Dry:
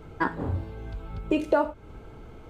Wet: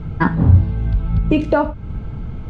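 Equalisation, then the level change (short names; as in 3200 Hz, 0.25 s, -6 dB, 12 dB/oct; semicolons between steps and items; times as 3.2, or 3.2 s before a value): LPF 4900 Hz 12 dB/oct; resonant low shelf 260 Hz +11 dB, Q 1.5; +7.5 dB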